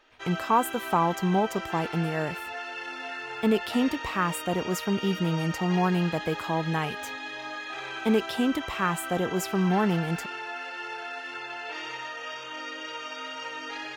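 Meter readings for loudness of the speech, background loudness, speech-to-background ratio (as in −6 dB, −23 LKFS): −27.5 LKFS, −35.5 LKFS, 8.0 dB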